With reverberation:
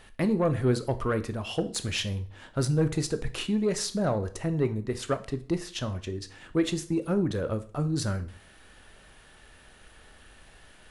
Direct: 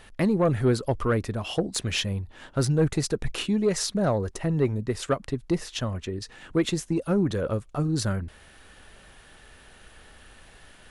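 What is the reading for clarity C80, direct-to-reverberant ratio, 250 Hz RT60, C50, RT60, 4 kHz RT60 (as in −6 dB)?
20.0 dB, 10.0 dB, 0.55 s, 15.5 dB, 0.50 s, 0.40 s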